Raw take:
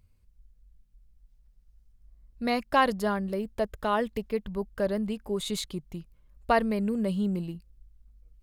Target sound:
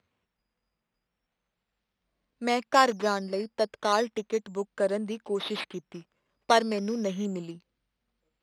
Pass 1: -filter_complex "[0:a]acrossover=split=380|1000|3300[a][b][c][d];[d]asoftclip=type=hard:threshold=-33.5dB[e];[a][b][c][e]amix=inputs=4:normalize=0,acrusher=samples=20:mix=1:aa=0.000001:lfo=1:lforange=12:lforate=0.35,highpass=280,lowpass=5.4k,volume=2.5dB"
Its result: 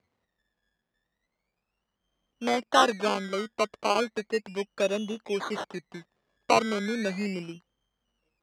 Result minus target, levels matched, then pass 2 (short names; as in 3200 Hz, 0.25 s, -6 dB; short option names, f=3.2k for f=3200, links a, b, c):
decimation with a swept rate: distortion +10 dB
-filter_complex "[0:a]acrossover=split=380|1000|3300[a][b][c][d];[d]asoftclip=type=hard:threshold=-33.5dB[e];[a][b][c][e]amix=inputs=4:normalize=0,acrusher=samples=7:mix=1:aa=0.000001:lfo=1:lforange=4.2:lforate=0.35,highpass=280,lowpass=5.4k,volume=2.5dB"